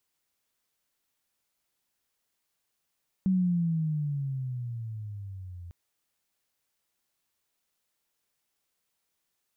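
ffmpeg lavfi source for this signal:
-f lavfi -i "aevalsrc='pow(10,(-21-19*t/2.45)/20)*sin(2*PI*191*2.45/(-14*log(2)/12)*(exp(-14*log(2)/12*t/2.45)-1))':d=2.45:s=44100"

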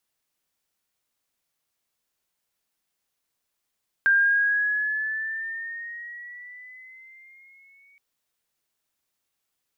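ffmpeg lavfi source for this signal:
-f lavfi -i "aevalsrc='pow(10,(-15-39.5*t/3.92)/20)*sin(2*PI*1590*3.92/(6*log(2)/12)*(exp(6*log(2)/12*t/3.92)-1))':d=3.92:s=44100"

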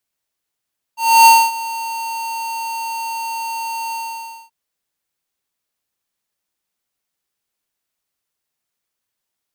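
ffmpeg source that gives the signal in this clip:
-f lavfi -i "aevalsrc='0.501*(2*lt(mod(912*t,1),0.5)-1)':d=3.529:s=44100,afade=t=in:d=0.29,afade=t=out:st=0.29:d=0.248:silence=0.119,afade=t=out:st=2.96:d=0.569"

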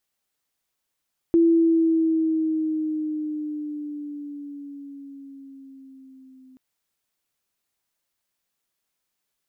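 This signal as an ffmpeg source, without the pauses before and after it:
-f lavfi -i "aevalsrc='pow(10,(-13-34*t/5.23)/20)*sin(2*PI*335*5.23/(-4.5*log(2)/12)*(exp(-4.5*log(2)/12*t/5.23)-1))':d=5.23:s=44100"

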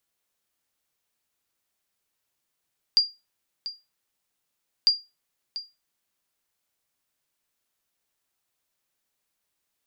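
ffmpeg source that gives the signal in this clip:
-f lavfi -i "aevalsrc='0.282*(sin(2*PI*4790*mod(t,1.9))*exp(-6.91*mod(t,1.9)/0.24)+0.188*sin(2*PI*4790*max(mod(t,1.9)-0.69,0))*exp(-6.91*max(mod(t,1.9)-0.69,0)/0.24))':d=3.8:s=44100"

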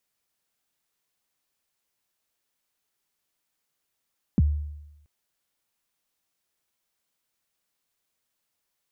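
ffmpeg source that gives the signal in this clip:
-f lavfi -i "aevalsrc='0.2*pow(10,-3*t/0.94)*sin(2*PI*(270*0.03/log(74/270)*(exp(log(74/270)*min(t,0.03)/0.03)-1)+74*max(t-0.03,0)))':d=0.68:s=44100"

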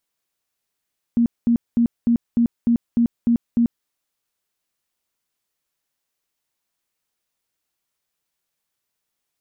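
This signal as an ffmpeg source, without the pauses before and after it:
-f lavfi -i "aevalsrc='0.224*sin(2*PI*235*mod(t,0.3))*lt(mod(t,0.3),21/235)':d=2.7:s=44100"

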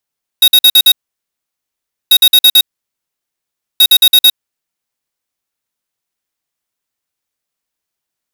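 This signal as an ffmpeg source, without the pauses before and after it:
-f lavfi -i "aevalsrc='0.562*(2*lt(mod(3770*t,1),0.5)-1)*clip(min(mod(mod(t,1.69),0.11),0.06-mod(mod(t,1.69),0.11))/0.005,0,1)*lt(mod(t,1.69),0.55)':d=5.07:s=44100"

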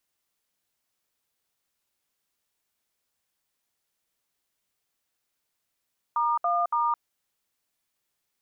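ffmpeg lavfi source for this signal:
-f lavfi -i "aevalsrc='0.0596*clip(min(mod(t,0.282),0.216-mod(t,0.282))/0.002,0,1)*(eq(floor(t/0.282),0)*(sin(2*PI*941*mod(t,0.282))+sin(2*PI*1209*mod(t,0.282)))+eq(floor(t/0.282),1)*(sin(2*PI*697*mod(t,0.282))+sin(2*PI*1209*mod(t,0.282)))+eq(floor(t/0.282),2)*(sin(2*PI*941*mod(t,0.282))+sin(2*PI*1209*mod(t,0.282))))':d=0.846:s=44100"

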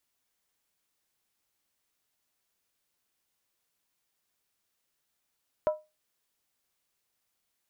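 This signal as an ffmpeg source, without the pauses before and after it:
-f lavfi -i "aevalsrc='0.112*pow(10,-3*t/0.24)*sin(2*PI*615*t)+0.0355*pow(10,-3*t/0.19)*sin(2*PI*980.3*t)+0.0112*pow(10,-3*t/0.164)*sin(2*PI*1313.6*t)+0.00355*pow(10,-3*t/0.158)*sin(2*PI*1412*t)+0.00112*pow(10,-3*t/0.147)*sin(2*PI*1631.6*t)':d=0.63:s=44100"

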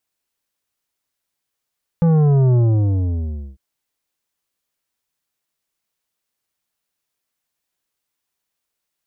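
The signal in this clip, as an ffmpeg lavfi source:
-f lavfi -i "aevalsrc='0.251*clip((1.55-t)/1.02,0,1)*tanh(3.16*sin(2*PI*170*1.55/log(65/170)*(exp(log(65/170)*t/1.55)-1)))/tanh(3.16)':d=1.55:s=44100"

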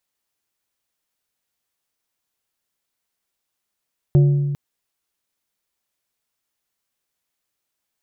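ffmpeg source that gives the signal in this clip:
-f lavfi -i "aevalsrc='0.376*pow(10,-3*t/1.78)*sin(2*PI*143*t)+0.112*pow(10,-3*t/0.937)*sin(2*PI*357.5*t)+0.0335*pow(10,-3*t/0.674)*sin(2*PI*572*t)+0.01*pow(10,-3*t/0.577)*sin(2*PI*715*t)':d=0.4:s=44100"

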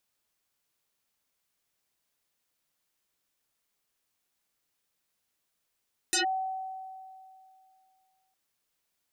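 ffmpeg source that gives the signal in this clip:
-f lavfi -i "aevalsrc='0.075*pow(10,-3*t/2.5)*sin(2*PI*759*t+8.9*clip(1-t/0.12,0,1)*sin(2*PI*1.46*759*t))':d=2.21:s=44100"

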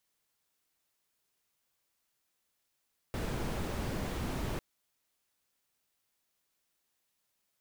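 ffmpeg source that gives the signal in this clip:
-f lavfi -i "anoisesrc=c=brown:a=0.0832:d=1.45:r=44100:seed=1"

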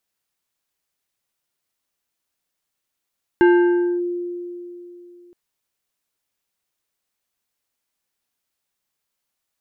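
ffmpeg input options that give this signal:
-f lavfi -i "aevalsrc='0.376*pow(10,-3*t/3.1)*sin(2*PI*351*t+0.55*clip(1-t/0.6,0,1)*sin(2*PI*3.5*351*t))':d=1.92:s=44100"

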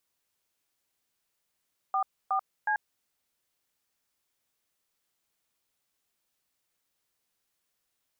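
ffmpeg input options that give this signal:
-f lavfi -i "aevalsrc='0.0447*clip(min(mod(t,0.366),0.088-mod(t,0.366))/0.002,0,1)*(eq(floor(t/0.366),0)*(sin(2*PI*770*mod(t,0.366))+sin(2*PI*1209*mod(t,0.366)))+eq(floor(t/0.366),1)*(sin(2*PI*770*mod(t,0.366))+sin(2*PI*1209*mod(t,0.366)))+eq(floor(t/0.366),2)*(sin(2*PI*852*mod(t,0.366))+sin(2*PI*1633*mod(t,0.366))))':d=1.098:s=44100"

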